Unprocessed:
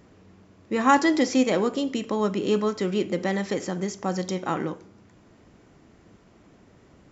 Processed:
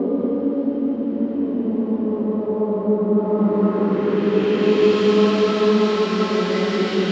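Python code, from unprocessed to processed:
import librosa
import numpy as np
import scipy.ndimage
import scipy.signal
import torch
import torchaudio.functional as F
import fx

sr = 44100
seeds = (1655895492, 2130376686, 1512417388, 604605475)

p1 = fx.dmg_noise_band(x, sr, seeds[0], low_hz=430.0, high_hz=5500.0, level_db=-38.0)
p2 = fx.paulstretch(p1, sr, seeds[1], factor=6.1, window_s=0.5, from_s=1.72)
p3 = fx.filter_sweep_lowpass(p2, sr, from_hz=510.0, to_hz=3900.0, start_s=3.12, end_s=4.98, q=0.78)
p4 = p3 + fx.echo_single(p3, sr, ms=185, db=-5.5, dry=0)
y = p4 * 10.0 ** (5.5 / 20.0)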